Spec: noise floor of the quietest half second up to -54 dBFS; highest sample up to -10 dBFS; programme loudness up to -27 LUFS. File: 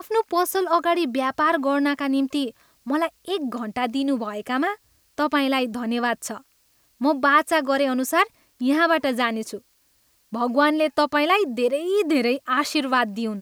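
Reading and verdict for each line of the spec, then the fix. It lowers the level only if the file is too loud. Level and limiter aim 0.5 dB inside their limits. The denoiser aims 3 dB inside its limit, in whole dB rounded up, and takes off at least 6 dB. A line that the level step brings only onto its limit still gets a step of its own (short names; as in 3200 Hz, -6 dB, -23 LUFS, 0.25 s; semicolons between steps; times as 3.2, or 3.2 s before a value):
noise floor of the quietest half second -63 dBFS: OK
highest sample -5.0 dBFS: fail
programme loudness -22.5 LUFS: fail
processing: gain -5 dB; limiter -10.5 dBFS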